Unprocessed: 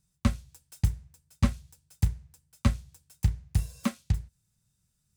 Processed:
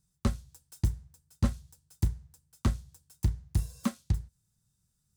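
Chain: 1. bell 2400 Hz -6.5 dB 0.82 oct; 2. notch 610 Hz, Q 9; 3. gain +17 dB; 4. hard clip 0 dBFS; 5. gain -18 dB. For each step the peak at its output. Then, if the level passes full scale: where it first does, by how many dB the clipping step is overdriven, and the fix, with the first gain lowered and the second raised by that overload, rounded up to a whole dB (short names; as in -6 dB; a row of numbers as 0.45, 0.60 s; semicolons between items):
-9.0, -9.0, +8.0, 0.0, -18.0 dBFS; step 3, 8.0 dB; step 3 +9 dB, step 5 -10 dB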